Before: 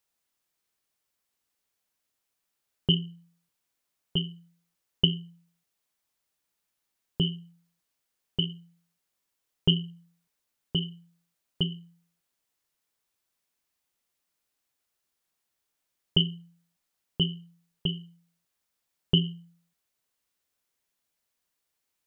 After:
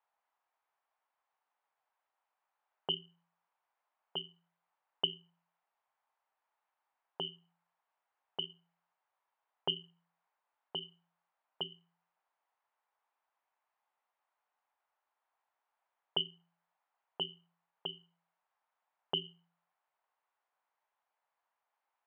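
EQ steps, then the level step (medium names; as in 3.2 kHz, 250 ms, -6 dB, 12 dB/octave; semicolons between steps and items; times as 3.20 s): ladder band-pass 980 Hz, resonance 50%; distance through air 160 m; +15.5 dB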